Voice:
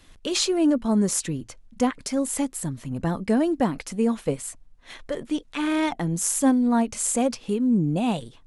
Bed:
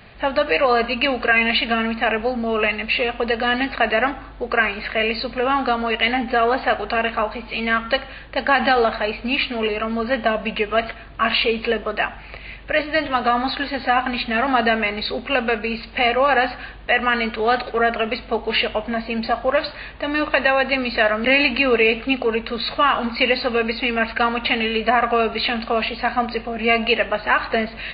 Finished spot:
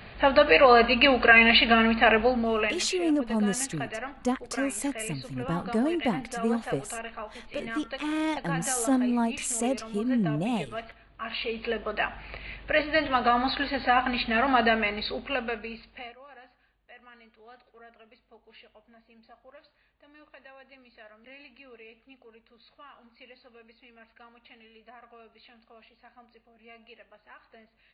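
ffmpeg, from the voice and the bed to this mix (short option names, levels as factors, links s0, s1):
-filter_complex "[0:a]adelay=2450,volume=0.562[s0];[1:a]volume=4.22,afade=t=out:st=2.17:d=0.71:silence=0.141254,afade=t=in:st=11.26:d=1.03:silence=0.237137,afade=t=out:st=14.64:d=1.52:silence=0.0354813[s1];[s0][s1]amix=inputs=2:normalize=0"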